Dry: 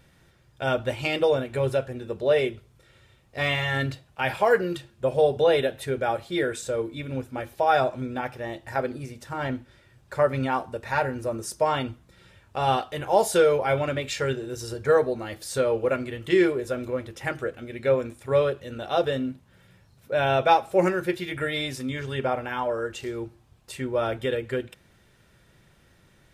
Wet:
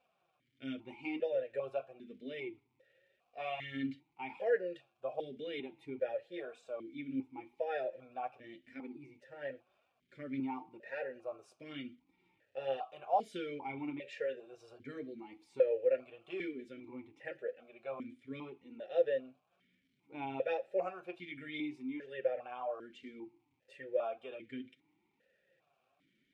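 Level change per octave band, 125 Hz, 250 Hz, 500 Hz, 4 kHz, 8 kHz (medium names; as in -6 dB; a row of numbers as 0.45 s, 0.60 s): -25.0 dB, -12.5 dB, -13.5 dB, -19.0 dB, under -30 dB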